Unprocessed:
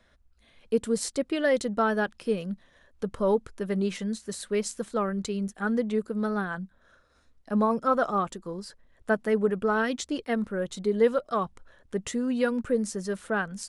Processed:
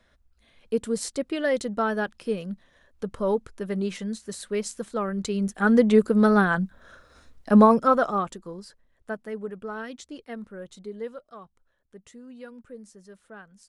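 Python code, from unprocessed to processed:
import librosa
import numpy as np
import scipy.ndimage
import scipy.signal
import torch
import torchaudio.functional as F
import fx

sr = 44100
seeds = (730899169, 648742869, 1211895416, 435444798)

y = fx.gain(x, sr, db=fx.line((5.02, -0.5), (5.87, 10.0), (7.59, 10.0), (8.04, 2.0), (9.31, -9.5), (10.75, -9.5), (11.38, -17.0)))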